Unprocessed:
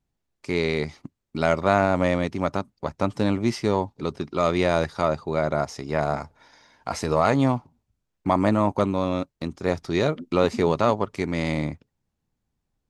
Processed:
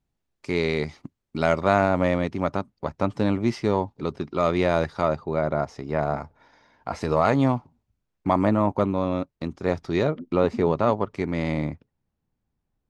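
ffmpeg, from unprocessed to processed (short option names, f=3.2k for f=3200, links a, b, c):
-af "asetnsamples=n=441:p=0,asendcmd='1.89 lowpass f 3300;5.16 lowpass f 1700;7.01 lowpass f 4000;8.45 lowpass f 2000;9.32 lowpass f 3100;10.03 lowpass f 1400;10.87 lowpass f 2200',lowpass=f=7k:p=1"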